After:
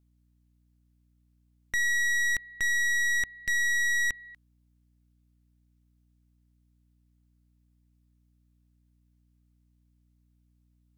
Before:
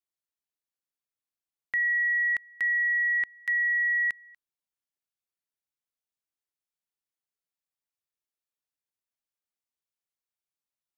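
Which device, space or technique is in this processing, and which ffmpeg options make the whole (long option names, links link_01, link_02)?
valve amplifier with mains hum: -af "aeval=exprs='(tanh(44.7*val(0)+0.65)-tanh(0.65))/44.7':channel_layout=same,aeval=exprs='val(0)+0.000224*(sin(2*PI*60*n/s)+sin(2*PI*2*60*n/s)/2+sin(2*PI*3*60*n/s)/3+sin(2*PI*4*60*n/s)/4+sin(2*PI*5*60*n/s)/5)':channel_layout=same,volume=7.5dB"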